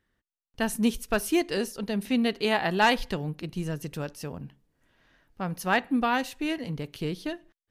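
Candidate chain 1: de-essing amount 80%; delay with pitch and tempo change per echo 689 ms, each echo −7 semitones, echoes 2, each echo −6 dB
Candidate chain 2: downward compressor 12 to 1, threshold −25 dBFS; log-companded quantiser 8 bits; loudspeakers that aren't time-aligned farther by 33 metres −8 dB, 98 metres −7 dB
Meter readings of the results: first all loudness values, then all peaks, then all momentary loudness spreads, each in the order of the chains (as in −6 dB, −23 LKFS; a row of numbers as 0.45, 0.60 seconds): −29.0, −31.0 LKFS; −11.5, −14.5 dBFS; 8, 8 LU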